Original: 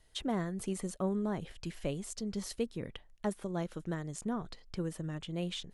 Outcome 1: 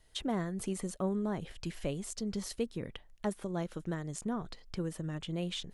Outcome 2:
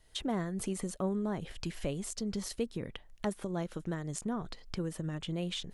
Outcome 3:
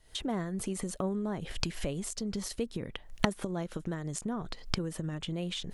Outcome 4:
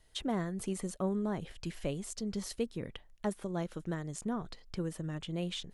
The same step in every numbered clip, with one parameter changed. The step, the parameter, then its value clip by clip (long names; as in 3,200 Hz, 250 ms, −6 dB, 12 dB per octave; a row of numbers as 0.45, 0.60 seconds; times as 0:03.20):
camcorder AGC, rising by: 13, 34, 84, 5.1 dB per second